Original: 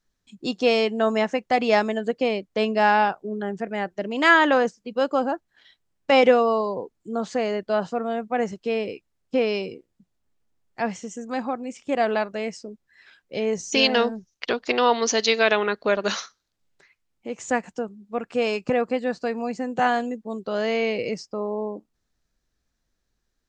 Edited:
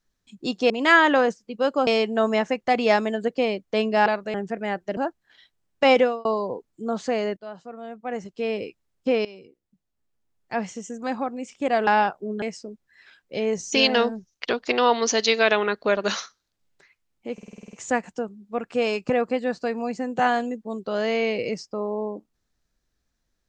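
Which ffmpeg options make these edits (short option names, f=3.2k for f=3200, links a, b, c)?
-filter_complex "[0:a]asplit=19[a][b][c][d][e][f][g][h][i][j][k][l][m][n][o][p][q][r][s];[a]atrim=end=0.702[t];[b]atrim=start=4.068:end=5.242[u];[c]atrim=start=0.698:end=2.892[v];[d]atrim=start=12.138:end=12.422[w];[e]atrim=start=3.438:end=4.072[x];[f]atrim=start=5.238:end=6.52,asetpts=PTS-STARTPTS,afade=t=out:st=0.962:d=0.32[y];[g]atrim=start=6.52:end=7.64,asetpts=PTS-STARTPTS,afade=t=in:d=0.004:c=hsin,afade=t=out:st=1.116:d=0.004:c=hsin:silence=0.177828[z];[h]atrim=start=7.64:end=9.52,asetpts=PTS-STARTPTS,afade=t=in:d=1.23:c=qua:silence=0.177828,afade=t=out:st=1.876:d=0.004:c=hsin:silence=0.133352[aa];[i]atrim=start=9.52:end=12.142,asetpts=PTS-STARTPTS,afade=t=in:d=1.5:silence=0.133352[ab];[j]atrim=start=2.888:end=3.442[ac];[k]atrim=start=12.418:end=17.382[ad];[l]atrim=start=17.328:end=17.382[ae];[m]atrim=start=17.328:end=17.382[af];[n]atrim=start=17.328:end=17.382[ag];[o]atrim=start=17.328:end=17.382[ah];[p]atrim=start=17.328:end=17.382[ai];[q]atrim=start=17.328:end=17.382[aj];[r]atrim=start=17.328:end=17.382[ak];[s]atrim=start=17.328[al];[t][u]acrossfade=d=0.004:c1=hsin:c2=hsin[am];[am][v]acrossfade=d=0.004:c1=hsin:c2=hsin[an];[an][w]acrossfade=d=0.004:c1=hsin:c2=hsin[ao];[ao][x]acrossfade=d=0.004:c1=hsin:c2=hsin[ap];[y][z][aa][ab]concat=n=4:v=0:a=1[aq];[ap][aq]acrossfade=d=0.004:c1=hsin:c2=hsin[ar];[ar][ac]acrossfade=d=0.004:c1=hsin:c2=hsin[as];[as][ad]acrossfade=d=0.004:c1=hsin:c2=hsin[at];[at][ae]acrossfade=d=0.004:c1=hsin:c2=hsin[au];[au][af]acrossfade=d=0.004:c1=hsin:c2=hsin[av];[av][ag]acrossfade=d=0.004:c1=hsin:c2=hsin[aw];[aw][ah]acrossfade=d=0.004:c1=hsin:c2=hsin[ax];[ax][ai]acrossfade=d=0.004:c1=hsin:c2=hsin[ay];[ay][aj]acrossfade=d=0.004:c1=hsin:c2=hsin[az];[az][ak]acrossfade=d=0.004:c1=hsin:c2=hsin[ba];[ba][al]acrossfade=d=0.004:c1=hsin:c2=hsin"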